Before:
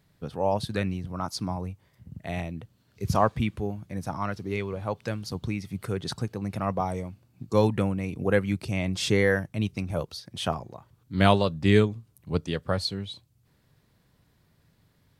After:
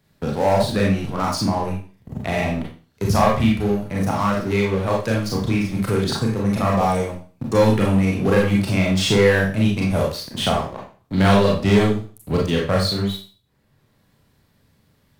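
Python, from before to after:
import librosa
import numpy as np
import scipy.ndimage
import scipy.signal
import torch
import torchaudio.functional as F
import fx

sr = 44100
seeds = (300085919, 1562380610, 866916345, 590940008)

y = fx.leveller(x, sr, passes=3)
y = fx.rev_schroeder(y, sr, rt60_s=0.36, comb_ms=28, drr_db=-3.0)
y = fx.band_squash(y, sr, depth_pct=40)
y = y * 10.0 ** (-5.5 / 20.0)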